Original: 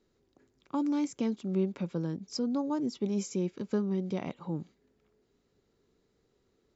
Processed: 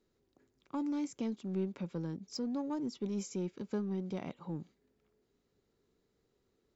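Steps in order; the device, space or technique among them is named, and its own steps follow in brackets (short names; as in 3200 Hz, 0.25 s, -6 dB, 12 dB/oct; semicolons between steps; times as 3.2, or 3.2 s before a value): parallel distortion (in parallel at -8 dB: hard clip -31.5 dBFS, distortion -9 dB); on the sum: gain -7.5 dB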